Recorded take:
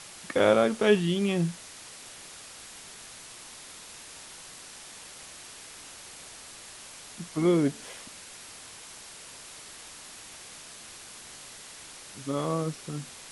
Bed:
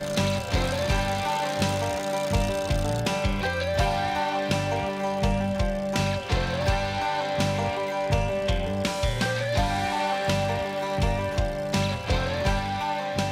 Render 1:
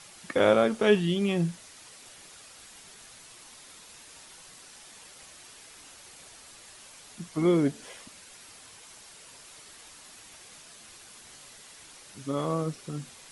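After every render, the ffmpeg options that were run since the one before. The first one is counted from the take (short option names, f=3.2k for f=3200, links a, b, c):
-af "afftdn=nr=6:nf=-47"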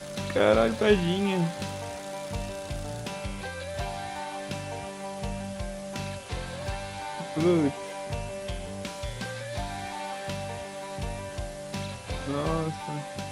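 -filter_complex "[1:a]volume=-9.5dB[a];[0:a][a]amix=inputs=2:normalize=0"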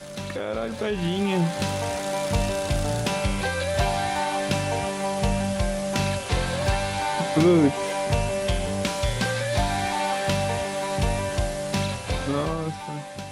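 -af "alimiter=limit=-20dB:level=0:latency=1:release=137,dynaudnorm=f=220:g=13:m=10dB"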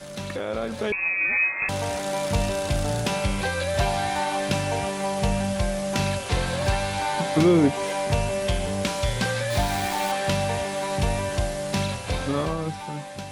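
-filter_complex "[0:a]asettb=1/sr,asplit=3[a][b][c];[a]atrim=end=0.924[d];[b]atrim=start=0.92:end=1.69,asetpts=PTS-STARTPTS,afade=t=in:d=0.004:c=qsin,afade=t=out:st=0.766:d=0.004:c=qsin,lowpass=f=2.3k:t=q:w=0.5098,lowpass=f=2.3k:t=q:w=0.6013,lowpass=f=2.3k:t=q:w=0.9,lowpass=f=2.3k:t=q:w=2.563,afreqshift=-2700[e];[c]atrim=start=1.686[f];[d][e]acrossfade=d=0.004:c1=hsin:c2=qsin[g];[g][f]acrossfade=d=0.004:c1=qsin:c2=hsin,asettb=1/sr,asplit=3[h][i][j];[h]atrim=end=9.504[k];[i]atrim=start=9.5:end=10.12,asetpts=PTS-STARTPTS,afade=t=in:d=0.004:c=qsin,afade=t=out:st=0.616:d=0.004:c=qsin,aeval=exprs='val(0)*gte(abs(val(0)),0.0376)':c=same[l];[j]atrim=start=10.116[m];[k][l]acrossfade=d=0.004:c1=hsin:c2=qsin[n];[n][m]acrossfade=d=0.004:c1=qsin:c2=hsin"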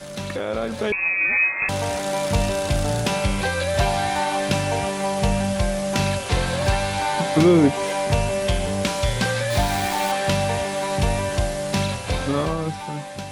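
-af "volume=3dB"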